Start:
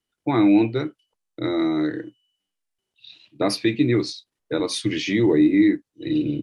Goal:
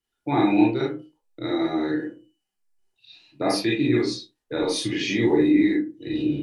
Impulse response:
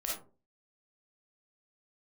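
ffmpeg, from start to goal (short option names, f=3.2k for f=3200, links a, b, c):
-filter_complex "[0:a]asettb=1/sr,asplit=3[a][b][c];[a]atrim=end=1.894[d];[b]atrim=start=1.89:end=3.54,asetpts=PTS-STARTPTS,afade=t=in:d=0.004:c=qsin,afade=t=out:st=1.646:d=0.004:c=qsin,equalizer=f=3.3k:w=3.6:g=-7.5[e];[c]atrim=start=3.536[f];[d][e]acrossfade=d=0.004:c1=hsin:c2=qsin[g];[g][f]acrossfade=d=0.004:c1=qsin:c2=hsin[h];[1:a]atrim=start_sample=2205,asetrate=57330,aresample=44100[i];[h][i]afir=irnorm=-1:irlink=0"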